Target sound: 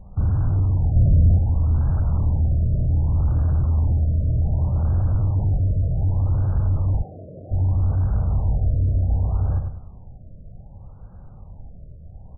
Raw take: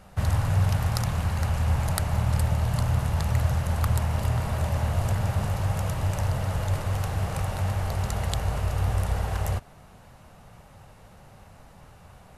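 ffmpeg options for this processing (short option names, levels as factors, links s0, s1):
-filter_complex "[0:a]asplit=2[s0][s1];[s1]adelay=98,lowpass=f=1400:p=1,volume=0.447,asplit=2[s2][s3];[s3]adelay=98,lowpass=f=1400:p=1,volume=0.41,asplit=2[s4][s5];[s5]adelay=98,lowpass=f=1400:p=1,volume=0.41,asplit=2[s6][s7];[s7]adelay=98,lowpass=f=1400:p=1,volume=0.41,asplit=2[s8][s9];[s9]adelay=98,lowpass=f=1400:p=1,volume=0.41[s10];[s0][s2][s4][s6][s8][s10]amix=inputs=6:normalize=0,volume=18.8,asoftclip=hard,volume=0.0531,aemphasis=mode=reproduction:type=riaa,asplit=3[s11][s12][s13];[s11]afade=t=out:st=0.95:d=0.02[s14];[s12]acontrast=82,afade=t=in:st=0.95:d=0.02,afade=t=out:st=1.37:d=0.02[s15];[s13]afade=t=in:st=1.37:d=0.02[s16];[s14][s15][s16]amix=inputs=3:normalize=0,asplit=3[s17][s18][s19];[s17]afade=t=out:st=7.02:d=0.02[s20];[s18]highpass=310,afade=t=in:st=7.02:d=0.02,afade=t=out:st=7.5:d=0.02[s21];[s19]afade=t=in:st=7.5:d=0.02[s22];[s20][s21][s22]amix=inputs=3:normalize=0,afftfilt=real='re*lt(b*sr/1024,680*pow(1700/680,0.5+0.5*sin(2*PI*0.65*pts/sr)))':imag='im*lt(b*sr/1024,680*pow(1700/680,0.5+0.5*sin(2*PI*0.65*pts/sr)))':win_size=1024:overlap=0.75,volume=0.596"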